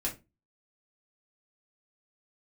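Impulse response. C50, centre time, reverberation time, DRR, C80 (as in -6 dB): 13.0 dB, 17 ms, 0.25 s, -4.5 dB, 20.5 dB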